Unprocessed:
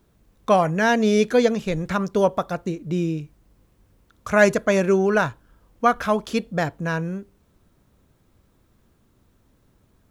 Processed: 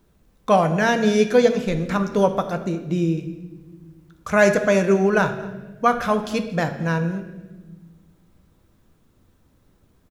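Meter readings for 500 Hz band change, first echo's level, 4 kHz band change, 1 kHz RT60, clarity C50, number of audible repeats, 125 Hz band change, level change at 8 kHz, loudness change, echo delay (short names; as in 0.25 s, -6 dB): +1.0 dB, -21.5 dB, +1.0 dB, 0.95 s, 10.5 dB, 1, +2.5 dB, +1.0 dB, +1.0 dB, 0.23 s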